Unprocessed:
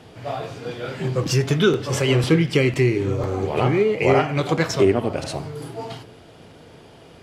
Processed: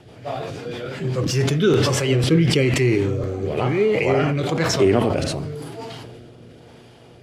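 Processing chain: mains buzz 120 Hz, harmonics 7, -49 dBFS; rotary cabinet horn 6 Hz, later 1 Hz, at 0.88 s; decay stretcher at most 24 dB/s

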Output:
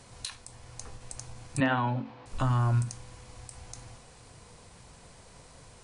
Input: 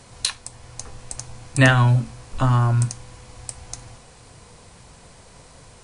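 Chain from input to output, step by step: peak limiter -13 dBFS, peak gain reduction 10 dB; 1.60–2.26 s: cabinet simulation 190–3700 Hz, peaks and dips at 270 Hz +8 dB, 520 Hz +4 dB, 880 Hz +9 dB; endings held to a fixed fall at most 150 dB/s; trim -5.5 dB

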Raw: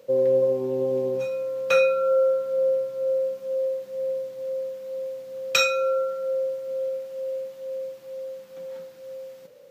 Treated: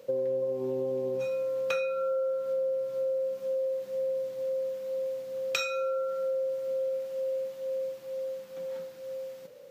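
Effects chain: compression 6:1, threshold -28 dBFS, peak gain reduction 12 dB

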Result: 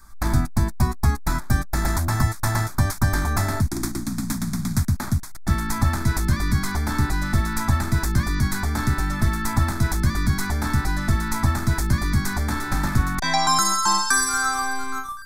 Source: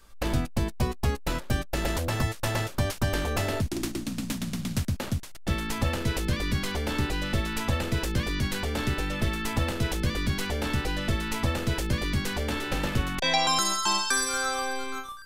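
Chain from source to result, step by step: static phaser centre 1.2 kHz, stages 4; trim +8 dB

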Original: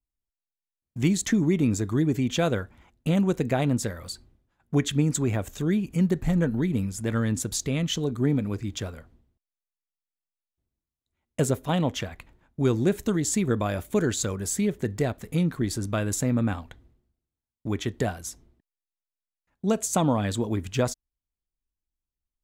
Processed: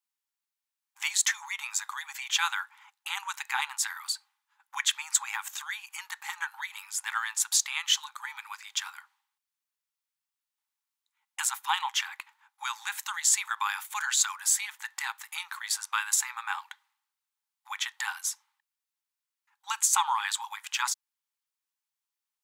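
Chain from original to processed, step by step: brick-wall FIR high-pass 790 Hz; trim +5.5 dB

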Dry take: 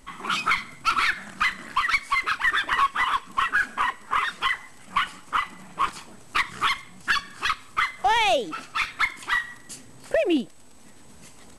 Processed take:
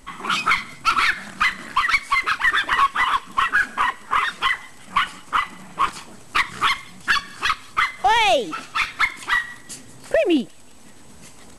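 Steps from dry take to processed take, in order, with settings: feedback echo behind a high-pass 185 ms, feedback 65%, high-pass 5.5 kHz, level -15.5 dB; trim +4 dB

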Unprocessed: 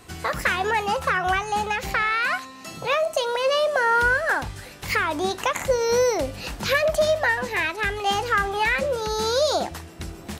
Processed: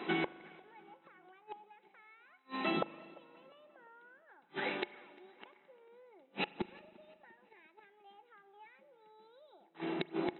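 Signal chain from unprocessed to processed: in parallel at -0.5 dB: compression 8:1, threshold -32 dBFS, peak gain reduction 15.5 dB; on the sum: brick-wall FIR band-pass 160–4000 Hz; inverted gate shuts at -20 dBFS, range -41 dB; small resonant body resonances 360/840/2200 Hz, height 10 dB; on a send: tape echo 349 ms, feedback 54%, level -22 dB, low-pass 2.8 kHz; on the sum: spring tank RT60 2.1 s, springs 39 ms, chirp 40 ms, DRR 17.5 dB; trim -1.5 dB

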